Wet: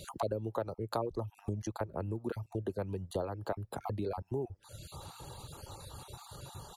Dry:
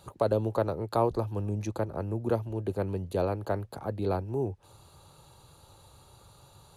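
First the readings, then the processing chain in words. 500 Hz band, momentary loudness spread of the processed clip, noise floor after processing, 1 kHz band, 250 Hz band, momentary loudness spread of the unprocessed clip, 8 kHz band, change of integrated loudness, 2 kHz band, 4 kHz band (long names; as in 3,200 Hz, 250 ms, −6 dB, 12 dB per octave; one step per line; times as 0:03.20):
−7.5 dB, 12 LU, −66 dBFS, −6.0 dB, −6.5 dB, 6 LU, can't be measured, −8.5 dB, −5.0 dB, 0.0 dB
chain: time-frequency cells dropped at random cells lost 21%
downward compressor 3 to 1, threshold −47 dBFS, peak gain reduction 19 dB
slap from a distant wall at 210 metres, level −27 dB
reverb reduction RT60 0.85 s
level +10 dB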